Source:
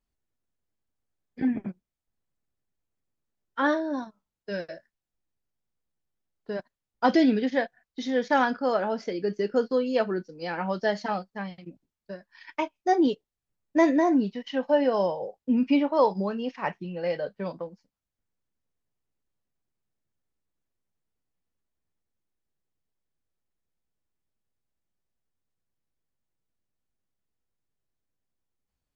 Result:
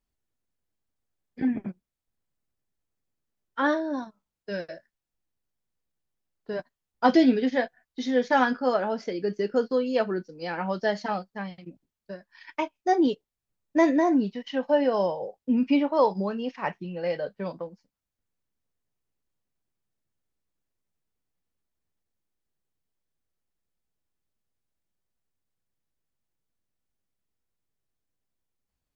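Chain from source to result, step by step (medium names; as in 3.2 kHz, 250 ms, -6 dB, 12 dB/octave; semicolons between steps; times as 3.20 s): 6.52–8.76 s: doubling 12 ms -7.5 dB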